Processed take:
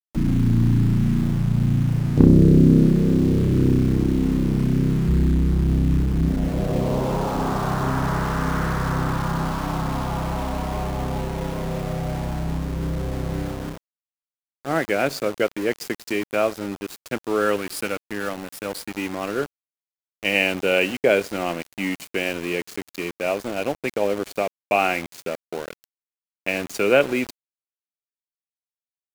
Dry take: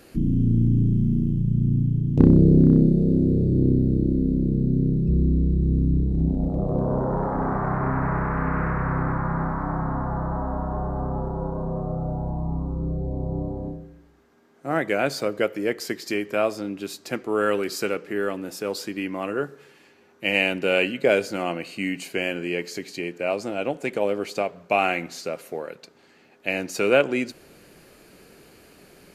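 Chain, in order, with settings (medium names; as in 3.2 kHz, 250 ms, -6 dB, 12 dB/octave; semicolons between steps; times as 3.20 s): 17.56–18.93 s: graphic EQ with 31 bands 400 Hz -10 dB, 6.3 kHz -9 dB, 10 kHz +10 dB; small samples zeroed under -31.5 dBFS; trim +1.5 dB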